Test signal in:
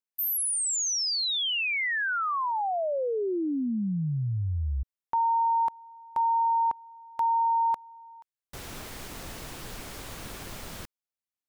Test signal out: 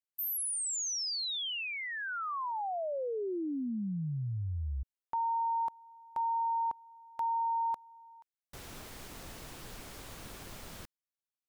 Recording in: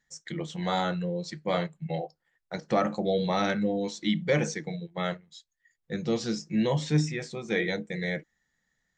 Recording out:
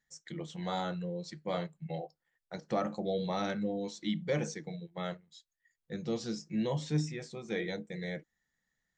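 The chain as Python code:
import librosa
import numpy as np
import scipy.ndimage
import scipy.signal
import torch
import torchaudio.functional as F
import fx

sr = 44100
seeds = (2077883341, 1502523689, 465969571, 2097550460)

y = fx.dynamic_eq(x, sr, hz=2000.0, q=1.3, threshold_db=-46.0, ratio=4.0, max_db=-4)
y = F.gain(torch.from_numpy(y), -6.5).numpy()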